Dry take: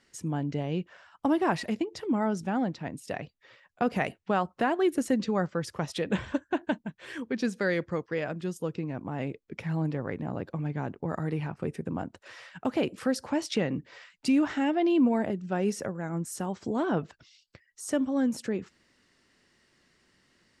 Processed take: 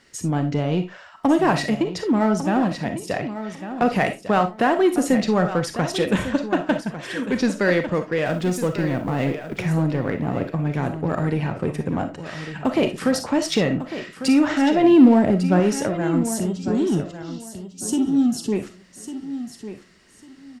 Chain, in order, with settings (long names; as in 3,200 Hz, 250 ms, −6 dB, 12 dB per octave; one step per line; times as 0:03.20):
0:08.26–0:09.63: mu-law and A-law mismatch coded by mu
0:14.84–0:15.60: low-shelf EQ 450 Hz +7 dB
0:16.29–0:18.52: gain on a spectral selection 440–2,600 Hz −22 dB
in parallel at −5 dB: hard clipping −29.5 dBFS, distortion −5 dB
on the sum: repeating echo 1,150 ms, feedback 21%, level −11.5 dB
on a send at −7 dB: convolution reverb RT60 0.20 s, pre-delay 15 ms
on the sum: level +5.5 dB